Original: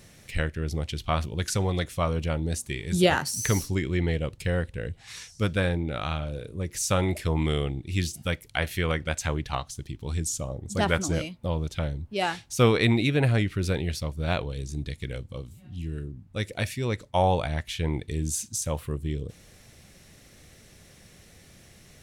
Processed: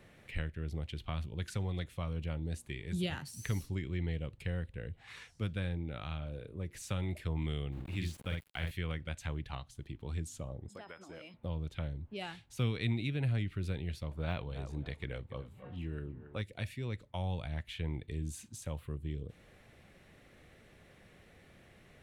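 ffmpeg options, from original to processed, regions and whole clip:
ffmpeg -i in.wav -filter_complex "[0:a]asettb=1/sr,asplit=3[link_01][link_02][link_03];[link_01]atrim=end=7.724[link_04];[link_02]atrim=start=7.72:end=8.71,asetpts=PTS-STARTPTS,afade=type=in:duration=0.004:curve=qsin,afade=type=out:start_time=0.986:duration=0.004:curve=qsin,aeval=exprs='val(0)*gte(abs(val(0)),0.0106)':channel_layout=same,asplit=2[link_05][link_06];[link_06]adelay=48,volume=-3dB[link_07];[link_05][link_07]amix=inputs=2:normalize=0,atrim=end_sample=43659[link_08];[link_03]atrim=start=8.706[link_09];[link_04][link_08]acrossfade=duration=0.004:curve1=hsin:curve2=qsin[link_10];[link_10][link_09]acrossfade=duration=0.004:curve1=qsin:curve2=hsin,asettb=1/sr,asplit=3[link_11][link_12][link_13];[link_11]atrim=end=10.684[link_14];[link_12]atrim=start=10.68:end=11.34,asetpts=PTS-STARTPTS,afade=type=in:duration=0.004:curve=qsin,afade=type=out:start_time=0.656:duration=0.004:curve=qsin,highpass=frequency=500:poles=1,acompressor=threshold=-38dB:ratio=12:attack=3.2:release=140:knee=1:detection=peak,aeval=exprs='val(0)+0.00316*sin(2*PI*5100*n/s)':channel_layout=same[link_15];[link_13]atrim=start=11.336[link_16];[link_14][link_15]acrossfade=duration=0.004:curve1=hsin:curve2=qsin[link_17];[link_17][link_16]acrossfade=duration=0.004:curve1=qsin:curve2=hsin,asettb=1/sr,asplit=3[link_18][link_19][link_20];[link_18]atrim=end=14.114[link_21];[link_19]atrim=start=14.11:end=16.42,asetpts=PTS-STARTPTS,afade=type=in:duration=0.004:curve=qsin,afade=type=out:start_time=2.306:duration=0.004:curve=qsin,deesser=0.9,equalizer=frequency=940:width_type=o:width=2.6:gain=13.5,asplit=2[link_22][link_23];[link_23]adelay=278,lowpass=frequency=2000:poles=1,volume=-17dB,asplit=2[link_24][link_25];[link_25]adelay=278,lowpass=frequency=2000:poles=1,volume=0.23[link_26];[link_22][link_24][link_26]amix=inputs=3:normalize=0,atrim=end_sample=101871[link_27];[link_20]atrim=start=16.416[link_28];[link_21][link_27]acrossfade=duration=0.004:curve1=hsin:curve2=qsin[link_29];[link_29][link_28]acrossfade=duration=0.004:curve1=qsin:curve2=hsin,equalizer=frequency=5600:width=1.9:gain=-6.5,acrossover=split=200|3000[link_30][link_31][link_32];[link_31]acompressor=threshold=-42dB:ratio=4[link_33];[link_30][link_33][link_32]amix=inputs=3:normalize=0,bass=frequency=250:gain=-5,treble=frequency=4000:gain=-14,volume=-3dB" out.wav

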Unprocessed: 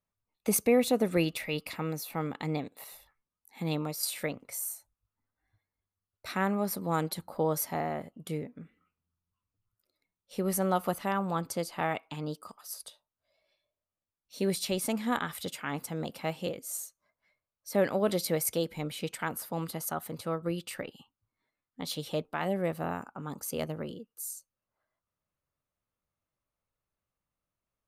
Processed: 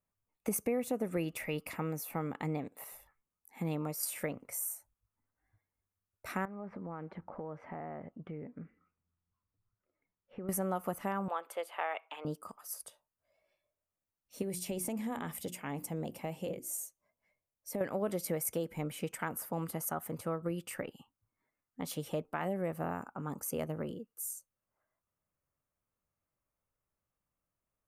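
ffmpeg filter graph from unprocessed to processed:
ffmpeg -i in.wav -filter_complex "[0:a]asettb=1/sr,asplit=3[link_01][link_02][link_03];[link_01]atrim=end=6.454[link_04];[link_02]atrim=start=6.45:end=10.49,asetpts=PTS-STARTPTS,afade=type=in:duration=0.004:curve=qsin,afade=type=out:start_time=4.036:duration=0.004:curve=qsin,lowpass=frequency=2400:width=0.5412,lowpass=frequency=2400:width=1.3066,acompressor=threshold=-39dB:ratio=6:attack=3.2:release=140:knee=1:detection=peak[link_05];[link_03]atrim=start=10.486[link_06];[link_04][link_05]acrossfade=duration=0.004:curve1=hsin:curve2=qsin[link_07];[link_07][link_06]acrossfade=duration=0.004:curve1=qsin:curve2=hsin,asettb=1/sr,asplit=3[link_08][link_09][link_10];[link_08]atrim=end=11.284[link_11];[link_09]atrim=start=11.28:end=12.25,asetpts=PTS-STARTPTS,afade=type=in:duration=0.004:curve=qsin,afade=type=out:start_time=0.966:duration=0.004:curve=qsin,highpass=frequency=490:width=0.5412,highpass=frequency=490:width=1.3066,highshelf=frequency=4300:width_type=q:width=3:gain=-8[link_12];[link_10]atrim=start=12.246[link_13];[link_11][link_12]acrossfade=duration=0.004:curve1=hsin:curve2=qsin[link_14];[link_14][link_13]acrossfade=duration=0.004:curve1=qsin:curve2=hsin,asettb=1/sr,asplit=3[link_15][link_16][link_17];[link_15]atrim=end=14.424[link_18];[link_16]atrim=start=14.42:end=17.81,asetpts=PTS-STARTPTS,afade=type=in:duration=0.004:curve=qsin,afade=type=out:start_time=3.386:duration=0.004:curve=qsin,equalizer=frequency=1400:width_type=o:width=0.71:gain=-10,bandreject=frequency=60:width_type=h:width=6,bandreject=frequency=120:width_type=h:width=6,bandreject=frequency=180:width_type=h:width=6,bandreject=frequency=240:width_type=h:width=6,bandreject=frequency=300:width_type=h:width=6,bandreject=frequency=360:width_type=h:width=6,acompressor=threshold=-31dB:ratio=6:attack=3.2:release=140:knee=1:detection=peak[link_19];[link_17]atrim=start=17.806[link_20];[link_18][link_19]acrossfade=duration=0.004:curve1=hsin:curve2=qsin[link_21];[link_21][link_20]acrossfade=duration=0.004:curve1=qsin:curve2=hsin,equalizer=frequency=4000:width_type=o:width=0.74:gain=-14,acompressor=threshold=-32dB:ratio=3" out.wav

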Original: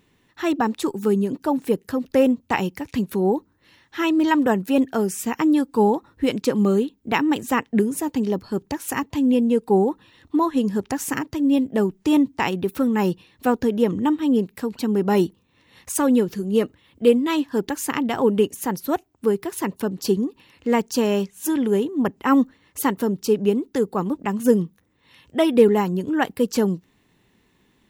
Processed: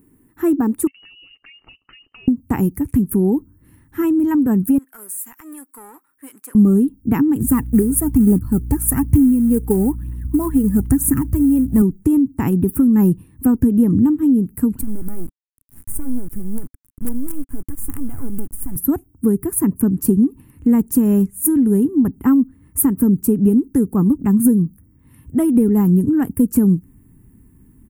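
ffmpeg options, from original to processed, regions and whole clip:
ffmpeg -i in.wav -filter_complex "[0:a]asettb=1/sr,asplit=3[link_01][link_02][link_03];[link_01]atrim=end=0.874[link_04];[link_02]atrim=start=0.87:end=2.28,asetpts=PTS-STARTPTS,afade=type=in:duration=0.004:curve=qsin,afade=type=out:start_time=1.406:duration=0.004:curve=qsin,equalizer=frequency=1600:width=5.1:gain=-11,acompressor=threshold=-28dB:ratio=10:attack=3.2:release=140:knee=1:detection=peak,lowpass=frequency=2600:width_type=q:width=0.5098,lowpass=frequency=2600:width_type=q:width=0.6013,lowpass=frequency=2600:width_type=q:width=0.9,lowpass=frequency=2600:width_type=q:width=2.563,afreqshift=-3100[link_05];[link_03]atrim=start=2.276[link_06];[link_04][link_05]acrossfade=duration=0.004:curve1=hsin:curve2=qsin[link_07];[link_07][link_06]acrossfade=duration=0.004:curve1=qsin:curve2=hsin,asettb=1/sr,asplit=3[link_08][link_09][link_10];[link_08]atrim=end=4.784[link_11];[link_09]atrim=start=4.78:end=6.55,asetpts=PTS-STARTPTS,afade=type=in:duration=0.004:curve=qsin,afade=type=out:start_time=1.766:duration=0.004:curve=qsin,aeval=exprs='if(lt(val(0),0),0.447*val(0),val(0))':channel_layout=same,highpass=1400,acompressor=threshold=-36dB:ratio=2.5:attack=3.2:release=140:knee=1:detection=peak[link_12];[link_10]atrim=start=6.546[link_13];[link_11][link_12]acrossfade=duration=0.004:curve1=hsin:curve2=qsin[link_14];[link_14][link_13]acrossfade=duration=0.004:curve1=qsin:curve2=hsin,asettb=1/sr,asplit=3[link_15][link_16][link_17];[link_15]atrim=end=7.404[link_18];[link_16]atrim=start=7.4:end=11.82,asetpts=PTS-STARTPTS,afade=type=in:duration=0.004:curve=qsin,afade=type=out:start_time=4.416:duration=0.004:curve=qsin,aphaser=in_gain=1:out_gain=1:delay=2.5:decay=0.56:speed=1.1:type=triangular,aeval=exprs='val(0)+0.00562*(sin(2*PI*60*n/s)+sin(2*PI*2*60*n/s)/2+sin(2*PI*3*60*n/s)/3+sin(2*PI*4*60*n/s)/4+sin(2*PI*5*60*n/s)/5)':channel_layout=same,acrusher=bits=5:mode=log:mix=0:aa=0.000001[link_19];[link_17]atrim=start=11.816[link_20];[link_18][link_19]acrossfade=duration=0.004:curve1=hsin:curve2=qsin[link_21];[link_21][link_20]acrossfade=duration=0.004:curve1=qsin:curve2=hsin,asettb=1/sr,asplit=3[link_22][link_23][link_24];[link_22]atrim=end=14.814[link_25];[link_23]atrim=start=14.81:end=18.76,asetpts=PTS-STARTPTS,afade=type=in:duration=0.004:curve=qsin,afade=type=out:start_time=3.946:duration=0.004:curve=qsin,acompressor=threshold=-37dB:ratio=2.5:attack=3.2:release=140:knee=1:detection=peak,acrusher=bits=5:dc=4:mix=0:aa=0.000001[link_26];[link_24]atrim=start=18.756[link_27];[link_25][link_26]acrossfade=duration=0.004:curve1=hsin:curve2=qsin[link_28];[link_28][link_27]acrossfade=duration=0.004:curve1=qsin:curve2=hsin,firequalizer=gain_entry='entry(190,0);entry(270,8);entry(550,-11);entry(1300,-9);entry(3700,-28);entry(5900,-18);entry(9200,7)':delay=0.05:min_phase=1,acompressor=threshold=-18dB:ratio=6,asubboost=boost=6:cutoff=140,volume=6.5dB" out.wav

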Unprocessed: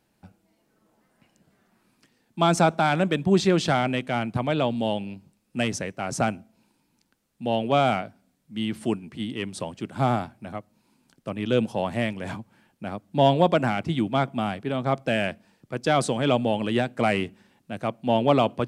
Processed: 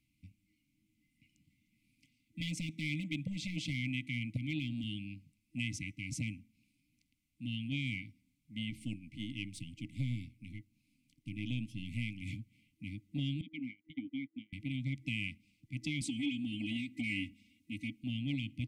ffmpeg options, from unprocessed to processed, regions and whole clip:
ffmpeg -i in.wav -filter_complex "[0:a]asettb=1/sr,asplit=3[link_01][link_02][link_03];[link_01]atrim=end=2.404[link_04];[link_02]atrim=start=2.4:end=4.84,asetpts=PTS-STARTPTS,afade=type=in:duration=0.004:curve=qsin,afade=type=out:start_time=2.436:duration=0.004:curve=qsin,highpass=89,asoftclip=type=hard:threshold=-15.5dB[link_05];[link_03]atrim=start=4.836[link_06];[link_04][link_05]acrossfade=duration=0.004:curve1=hsin:curve2=qsin[link_07];[link_07][link_06]acrossfade=duration=0.004:curve1=qsin:curve2=hsin,asettb=1/sr,asplit=3[link_08][link_09][link_10];[link_08]atrim=end=8.704[link_11];[link_09]atrim=start=8.7:end=12.22,asetpts=PTS-STARTPTS,afade=type=in:duration=0.004:curve=qsin,afade=type=out:start_time=3.516:duration=0.004:curve=qsin,aeval=exprs='if(lt(val(0),0),0.708*val(0),val(0))':channel_layout=same,equalizer=frequency=1800:width_type=o:width=0.22:gain=-9.5[link_12];[link_10]atrim=start=12.216[link_13];[link_11][link_12]acrossfade=duration=0.004:curve1=hsin:curve2=qsin[link_14];[link_14][link_13]acrossfade=duration=0.004:curve1=qsin:curve2=hsin,asettb=1/sr,asplit=3[link_15][link_16][link_17];[link_15]atrim=end=13.414[link_18];[link_16]atrim=start=13.41:end=14.53,asetpts=PTS-STARTPTS,afade=type=in:duration=0.004:curve=qsin,afade=type=out:start_time=1.116:duration=0.004:curve=qsin,asplit=3[link_19][link_20][link_21];[link_19]bandpass=frequency=270:width_type=q:width=8,volume=0dB[link_22];[link_20]bandpass=frequency=2290:width_type=q:width=8,volume=-6dB[link_23];[link_21]bandpass=frequency=3010:width_type=q:width=8,volume=-9dB[link_24];[link_22][link_23][link_24]amix=inputs=3:normalize=0,agate=range=-29dB:threshold=-38dB:ratio=16:release=100:detection=peak[link_25];[link_17]atrim=start=14.526[link_26];[link_18][link_25]acrossfade=duration=0.004:curve1=hsin:curve2=qsin[link_27];[link_27][link_26]acrossfade=duration=0.004:curve1=qsin:curve2=hsin,asettb=1/sr,asplit=3[link_28][link_29][link_30];[link_28]atrim=end=16.014[link_31];[link_29]atrim=start=16.01:end=18.04,asetpts=PTS-STARTPTS,afade=type=in:duration=0.004:curve=qsin,afade=type=out:start_time=2.026:duration=0.004:curve=qsin,highpass=61,aecho=1:1:3.6:0.99,atrim=end_sample=89523[link_32];[link_30]atrim=start=18.036[link_33];[link_31][link_32]acrossfade=duration=0.004:curve1=hsin:curve2=qsin[link_34];[link_34][link_33]acrossfade=duration=0.004:curve1=qsin:curve2=hsin,afftfilt=real='re*(1-between(b*sr/4096,320,2000))':imag='im*(1-between(b*sr/4096,320,2000))':win_size=4096:overlap=0.75,acompressor=threshold=-27dB:ratio=4,firequalizer=gain_entry='entry(120,0);entry(190,-9);entry(510,9);entry(1300,3);entry(2300,0);entry(3900,-7)':delay=0.05:min_phase=1,volume=-3dB" out.wav

